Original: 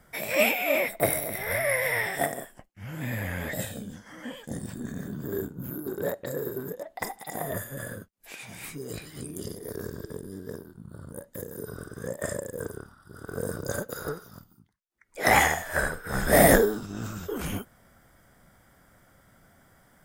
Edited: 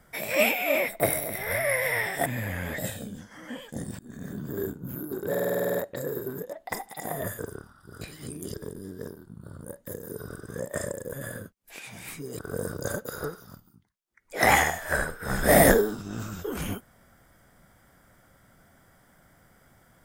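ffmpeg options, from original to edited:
-filter_complex "[0:a]asplit=17[a][b][c][d][e][f][g][h][i][j][k][l][m][n][o][p][q];[a]atrim=end=2.262[r];[b]atrim=start=3.008:end=4.74,asetpts=PTS-STARTPTS,afade=t=out:st=1.728:d=0.004:c=hsin:silence=0.0794328[s];[c]atrim=start=4.74:end=6.102,asetpts=PTS-STARTPTS,afade=t=in:d=0.34:silence=0.0794328[t];[d]atrim=start=6.048:end=6.102[u];[e]atrim=start=6.048:end=6.102[v];[f]atrim=start=6.048:end=6.102[w];[g]atrim=start=6.048:end=6.102[x];[h]atrim=start=6.048:end=6.102[y];[i]atrim=start=6.048:end=6.102[z];[j]atrim=start=6.048:end=6.102[aa];[k]atrim=start=6.048:end=6.102[ab];[l]atrim=start=6.048:end=7.692[ac];[m]atrim=start=12.608:end=13.232[ad];[n]atrim=start=8.948:end=9.482[ae];[o]atrim=start=10.018:end=12.612[af];[p]atrim=start=7.688:end=8.952[ag];[q]atrim=start=13.228[ah];[s][t]concat=n=2:v=0:a=1[ai];[r][ai]acrossfade=d=0.004:c1=hsin:c2=hsin[aj];[aj][u]acrossfade=d=0.004:c1=hsin:c2=hsin[ak];[ak][v]acrossfade=d=0.004:c1=hsin:c2=hsin[al];[al][w]acrossfade=d=0.004:c1=hsin:c2=hsin[am];[am][x]acrossfade=d=0.004:c1=hsin:c2=hsin[an];[an][y]acrossfade=d=0.004:c1=hsin:c2=hsin[ao];[ao][z]acrossfade=d=0.004:c1=hsin:c2=hsin[ap];[ap][aa]acrossfade=d=0.004:c1=hsin:c2=hsin[aq];[aq][ab]acrossfade=d=0.004:c1=hsin:c2=hsin[ar];[ar][ac]acrossfade=d=0.004:c1=hsin:c2=hsin[as];[as][ad]acrossfade=d=0.004:c1=hsin:c2=hsin[at];[at][ae]acrossfade=d=0.004:c1=hsin:c2=hsin[au];[au][af]acrossfade=d=0.004:c1=hsin:c2=hsin[av];[av][ag]acrossfade=d=0.004:c1=hsin:c2=hsin[aw];[aw][ah]acrossfade=d=0.004:c1=hsin:c2=hsin"

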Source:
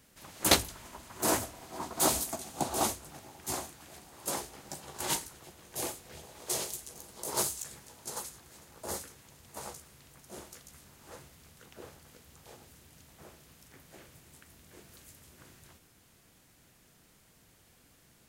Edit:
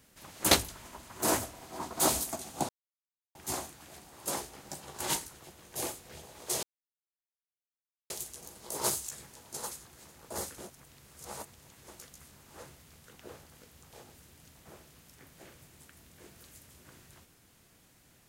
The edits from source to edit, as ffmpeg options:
-filter_complex "[0:a]asplit=6[a][b][c][d][e][f];[a]atrim=end=2.69,asetpts=PTS-STARTPTS,afade=t=out:st=2.686:d=0.004:c=hsin[g];[b]atrim=start=2.69:end=3.35,asetpts=PTS-STARTPTS,volume=0[h];[c]atrim=start=3.35:end=6.63,asetpts=PTS-STARTPTS,afade=t=in:d=0.004:c=hsin,afade=t=out:st=3.276:d=0.004:c=hsin,apad=pad_dur=1.47[i];[d]atrim=start=6.63:end=9.112,asetpts=PTS-STARTPTS,afade=t=in:d=0.004:c=hsin[j];[e]atrim=start=9.108:end=10.412,asetpts=PTS-STARTPTS,areverse[k];[f]atrim=start=10.408[l];[g][h][i][j]concat=n=4:v=0:a=1[m];[m][k]acrossfade=d=0.004:c1=hsin:c2=hsin[n];[n][l]acrossfade=d=0.004:c1=hsin:c2=hsin"

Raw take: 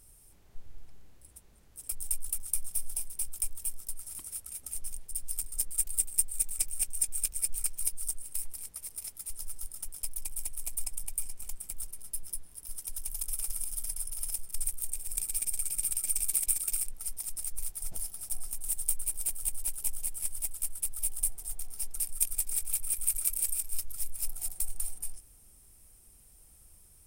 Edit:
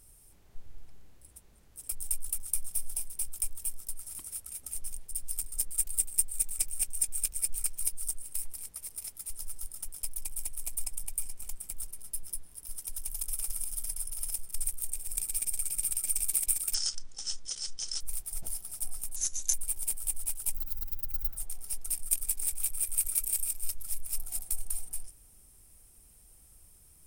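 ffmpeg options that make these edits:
-filter_complex "[0:a]asplit=7[a][b][c][d][e][f][g];[a]atrim=end=16.744[h];[b]atrim=start=16.74:end=17.5,asetpts=PTS-STARTPTS,asetrate=26460,aresample=44100[i];[c]atrim=start=17.496:end=18.654[j];[d]atrim=start=18.65:end=18.92,asetpts=PTS-STARTPTS,asetrate=31311,aresample=44100,atrim=end_sample=16770,asetpts=PTS-STARTPTS[k];[e]atrim=start=18.916:end=19.934[l];[f]atrim=start=19.93:end=21.47,asetpts=PTS-STARTPTS,asetrate=82026,aresample=44100[m];[g]atrim=start=21.466[n];[h][i]acrossfade=d=0.004:c1=hsin:c2=hsin[o];[o][j]acrossfade=d=0.004:c1=hsin:c2=hsin[p];[p][k]acrossfade=d=0.004:c1=hsin:c2=hsin[q];[q][l]acrossfade=d=0.004:c1=hsin:c2=hsin[r];[r][m]acrossfade=d=0.004:c1=hsin:c2=hsin[s];[s][n]acrossfade=d=0.004:c1=hsin:c2=hsin"

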